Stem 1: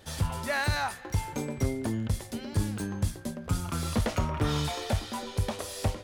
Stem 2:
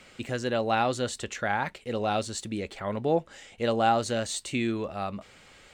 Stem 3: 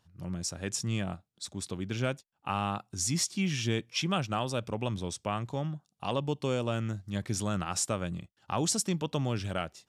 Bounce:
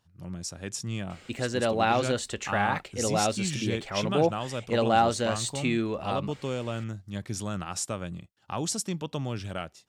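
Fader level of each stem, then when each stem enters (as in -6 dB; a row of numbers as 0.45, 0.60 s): off, +1.0 dB, -1.5 dB; off, 1.10 s, 0.00 s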